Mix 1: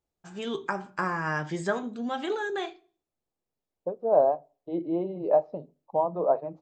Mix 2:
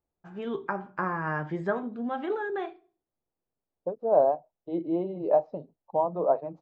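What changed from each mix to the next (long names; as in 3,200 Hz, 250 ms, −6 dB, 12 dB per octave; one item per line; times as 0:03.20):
first voice: add low-pass filter 1,700 Hz 12 dB per octave
second voice: send off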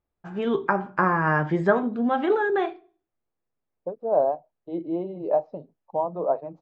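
first voice +8.5 dB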